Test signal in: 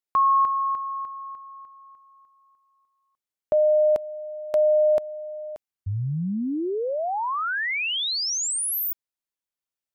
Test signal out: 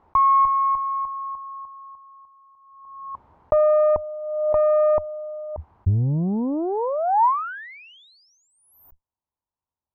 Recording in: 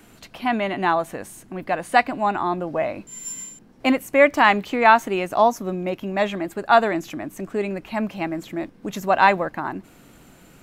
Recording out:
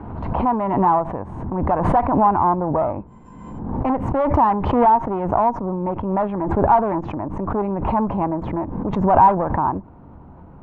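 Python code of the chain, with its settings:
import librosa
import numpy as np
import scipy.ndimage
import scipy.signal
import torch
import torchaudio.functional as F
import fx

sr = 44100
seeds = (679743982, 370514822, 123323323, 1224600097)

y = fx.low_shelf(x, sr, hz=320.0, db=11.0)
y = fx.tube_stage(y, sr, drive_db=18.0, bias=0.65)
y = fx.peak_eq(y, sr, hz=78.0, db=11.5, octaves=0.65)
y = fx.rider(y, sr, range_db=3, speed_s=2.0)
y = fx.lowpass_res(y, sr, hz=950.0, q=4.9)
y = fx.pre_swell(y, sr, db_per_s=41.0)
y = y * librosa.db_to_amplitude(-1.5)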